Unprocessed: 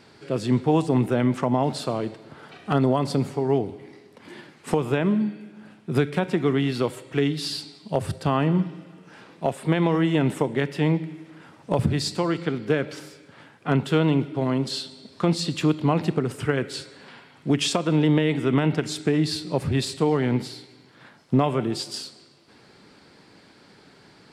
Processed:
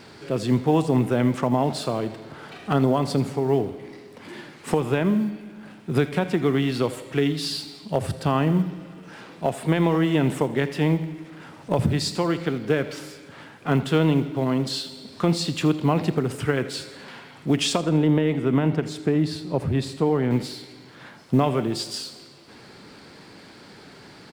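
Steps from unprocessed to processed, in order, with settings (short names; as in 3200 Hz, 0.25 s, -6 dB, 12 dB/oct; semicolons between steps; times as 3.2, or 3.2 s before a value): G.711 law mismatch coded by mu; 17.78–20.31 high shelf 2100 Hz -9.5 dB; feedback echo 82 ms, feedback 44%, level -17 dB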